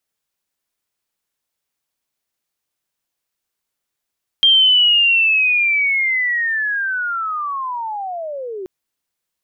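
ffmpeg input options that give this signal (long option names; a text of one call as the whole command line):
ffmpeg -f lavfi -i "aevalsrc='pow(10,(-8-17*t/4.23)/20)*sin(2*PI*(3200*t-2840*t*t/(2*4.23)))':duration=4.23:sample_rate=44100" out.wav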